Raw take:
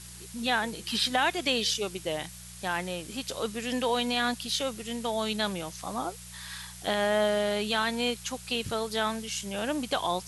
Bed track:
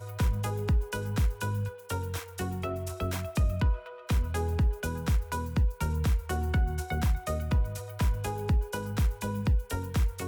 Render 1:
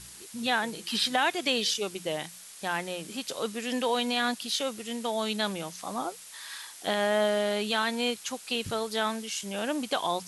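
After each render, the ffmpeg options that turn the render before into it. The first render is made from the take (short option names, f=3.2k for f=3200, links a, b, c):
-af "bandreject=f=60:t=h:w=4,bandreject=f=120:t=h:w=4,bandreject=f=180:t=h:w=4"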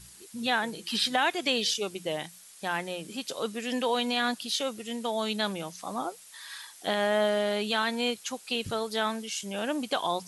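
-af "afftdn=nr=6:nf=-47"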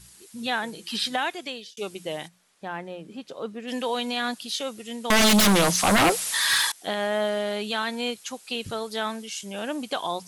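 -filter_complex "[0:a]asplit=3[a][b][c];[a]afade=t=out:st=2.27:d=0.02[d];[b]lowpass=f=1.1k:p=1,afade=t=in:st=2.27:d=0.02,afade=t=out:st=3.67:d=0.02[e];[c]afade=t=in:st=3.67:d=0.02[f];[d][e][f]amix=inputs=3:normalize=0,asettb=1/sr,asplit=3[g][h][i];[g]atrim=end=5.104[j];[h]atrim=start=5.1:end=6.72,asetpts=PTS-STARTPTS,afade=t=in:d=0.004:c=qsin,afade=t=out:st=1.616:d=0.004:c=qsin,aeval=exprs='0.188*sin(PI/2*7.94*val(0)/0.188)':c=same[k];[i]atrim=start=6.716[l];[j][k]acrossfade=d=0.004:c1=hsin:c2=qsin[m];[m][l]acrossfade=d=0.004:c1=qsin:c2=hsin,asplit=2[n][o];[n]atrim=end=1.77,asetpts=PTS-STARTPTS,afade=t=out:st=1.14:d=0.63[p];[o]atrim=start=1.77,asetpts=PTS-STARTPTS,afade=t=in:d=0.004:c=hsin[q];[p][q]concat=n=2:v=0:a=1"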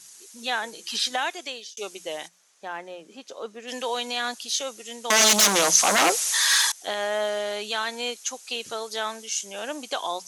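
-af "highpass=390,equalizer=f=6.3k:t=o:w=0.48:g=10.5"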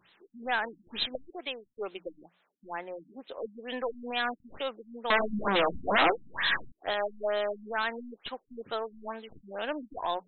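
-af "aeval=exprs='(tanh(6.31*val(0)+0.3)-tanh(0.3))/6.31':c=same,afftfilt=real='re*lt(b*sr/1024,270*pow(4200/270,0.5+0.5*sin(2*PI*2.2*pts/sr)))':imag='im*lt(b*sr/1024,270*pow(4200/270,0.5+0.5*sin(2*PI*2.2*pts/sr)))':win_size=1024:overlap=0.75"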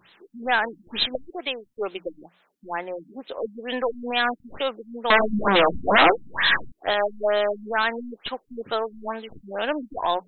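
-af "volume=8dB"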